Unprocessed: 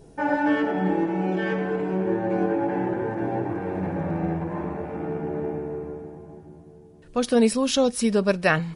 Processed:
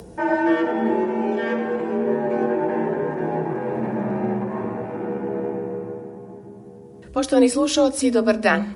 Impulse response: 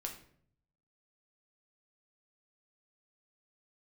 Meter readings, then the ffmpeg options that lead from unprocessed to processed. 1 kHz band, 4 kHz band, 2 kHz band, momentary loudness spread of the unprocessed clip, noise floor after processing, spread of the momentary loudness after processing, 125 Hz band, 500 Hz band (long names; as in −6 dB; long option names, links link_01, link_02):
+2.5 dB, +1.5 dB, +2.0 dB, 10 LU, −42 dBFS, 13 LU, −3.0 dB, +3.5 dB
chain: -filter_complex "[0:a]afreqshift=38,acompressor=mode=upward:threshold=-38dB:ratio=2.5,asplit=2[link_01][link_02];[link_02]equalizer=frequency=3100:width=1.3:gain=-11.5[link_03];[1:a]atrim=start_sample=2205[link_04];[link_03][link_04]afir=irnorm=-1:irlink=0,volume=-4.5dB[link_05];[link_01][link_05]amix=inputs=2:normalize=0"